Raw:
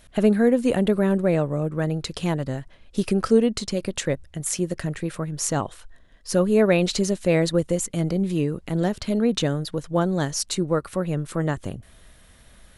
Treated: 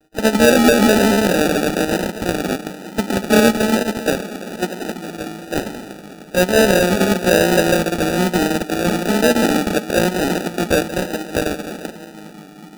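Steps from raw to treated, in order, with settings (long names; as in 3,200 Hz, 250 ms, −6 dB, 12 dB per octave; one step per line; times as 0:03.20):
wavefolder on the positive side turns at −14.5 dBFS
on a send at −5 dB: convolution reverb RT60 3.5 s, pre-delay 3 ms
on the sum: linear-prediction vocoder at 8 kHz pitch kept
echo machine with several playback heads 73 ms, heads second and third, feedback 68%, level −15.5 dB
pitch-shifted copies added +5 semitones −9 dB
in parallel at −10 dB: log-companded quantiser 2 bits
on the sum: Butterworth high-pass 180 Hz 72 dB per octave
parametric band 2,100 Hz −15 dB 1.7 octaves
decimation without filtering 41×
pitch vibrato 1.1 Hz 39 cents
level +2 dB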